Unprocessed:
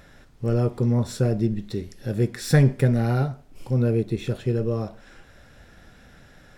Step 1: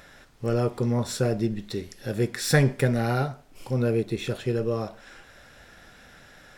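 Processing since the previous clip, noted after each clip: low shelf 370 Hz -10 dB; gain +4 dB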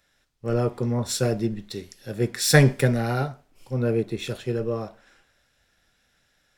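three-band expander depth 70%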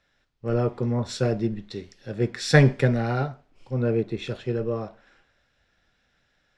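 air absorption 120 m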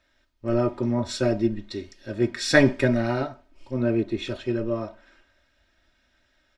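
comb 3.2 ms, depth 85%

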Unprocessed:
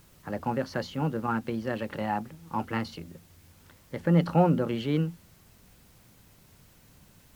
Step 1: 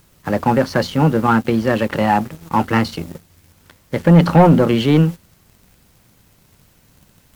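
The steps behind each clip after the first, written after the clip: sample leveller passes 2; gain +7.5 dB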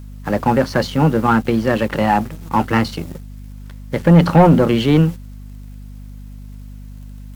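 hum 50 Hz, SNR 17 dB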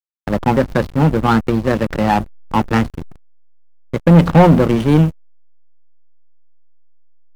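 backlash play -14.5 dBFS; gain +2 dB

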